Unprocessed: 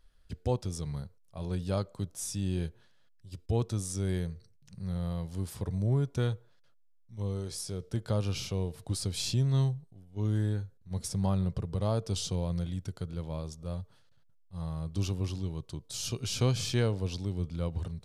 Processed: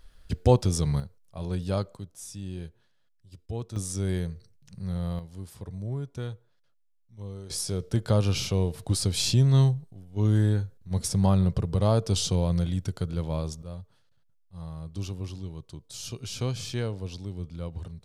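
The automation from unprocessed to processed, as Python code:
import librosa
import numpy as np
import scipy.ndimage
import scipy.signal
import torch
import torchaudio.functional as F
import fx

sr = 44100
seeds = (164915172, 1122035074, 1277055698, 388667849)

y = fx.gain(x, sr, db=fx.steps((0.0, 10.5), (1.0, 3.0), (1.97, -5.0), (3.76, 3.0), (5.19, -5.0), (7.5, 7.0), (13.62, -2.5)))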